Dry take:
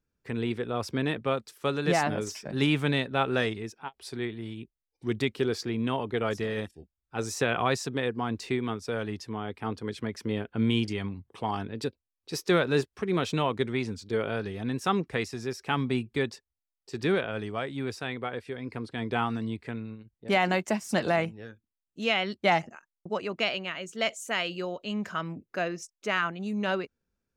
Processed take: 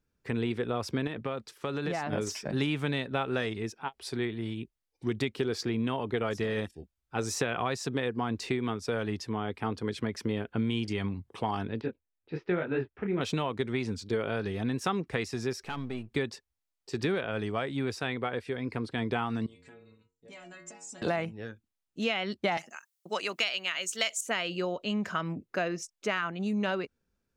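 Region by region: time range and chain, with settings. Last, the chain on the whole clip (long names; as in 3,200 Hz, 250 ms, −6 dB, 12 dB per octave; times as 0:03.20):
0:01.07–0:02.13: high-shelf EQ 6,900 Hz −7 dB + downward compressor 4 to 1, threshold −32 dBFS
0:11.81–0:13.21: low-pass filter 2,500 Hz 24 dB per octave + notch filter 1,100 Hz, Q 6.8 + micro pitch shift up and down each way 41 cents
0:15.63–0:16.11: gain on one half-wave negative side −7 dB + downward compressor 2 to 1, threshold −41 dBFS
0:19.46–0:21.02: stiff-string resonator 84 Hz, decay 0.51 s, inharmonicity 0.008 + downward compressor 3 to 1, threshold −54 dBFS + low-pass with resonance 7,400 Hz, resonance Q 6.8
0:22.57–0:24.21: Chebyshev high-pass filter 160 Hz + spectral tilt +4.5 dB per octave
whole clip: downward compressor, threshold −29 dBFS; high-shelf EQ 11,000 Hz −5 dB; level +3 dB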